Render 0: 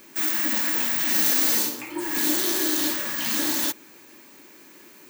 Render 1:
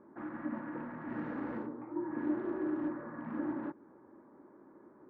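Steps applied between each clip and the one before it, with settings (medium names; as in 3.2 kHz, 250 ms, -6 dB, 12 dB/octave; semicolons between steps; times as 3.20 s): local Wiener filter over 15 samples; low-pass 1.3 kHz 24 dB/octave; dynamic bell 770 Hz, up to -5 dB, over -44 dBFS, Q 0.76; trim -3.5 dB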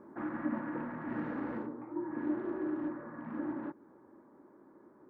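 gain riding 2 s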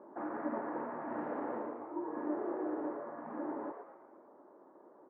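band-pass filter 670 Hz, Q 1.9; frequency-shifting echo 114 ms, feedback 44%, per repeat +120 Hz, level -8.5 dB; trim +7 dB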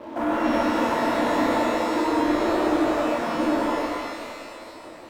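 comb of notches 400 Hz; waveshaping leveller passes 3; pitch-shifted reverb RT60 2 s, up +12 st, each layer -8 dB, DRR -2.5 dB; trim +5 dB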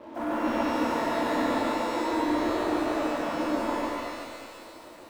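bit-crushed delay 144 ms, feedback 35%, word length 8-bit, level -3 dB; trim -6.5 dB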